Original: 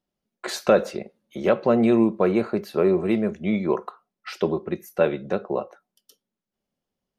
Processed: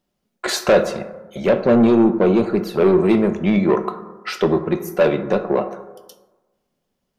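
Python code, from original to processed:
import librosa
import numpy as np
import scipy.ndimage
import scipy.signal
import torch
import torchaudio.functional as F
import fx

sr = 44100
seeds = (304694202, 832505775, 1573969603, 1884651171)

y = fx.env_flanger(x, sr, rest_ms=2.2, full_db=-17.0, at=(0.83, 2.81))
y = 10.0 ** (-17.0 / 20.0) * np.tanh(y / 10.0 ** (-17.0 / 20.0))
y = fx.rev_plate(y, sr, seeds[0], rt60_s=1.2, hf_ratio=0.35, predelay_ms=0, drr_db=8.5)
y = y * librosa.db_to_amplitude(8.5)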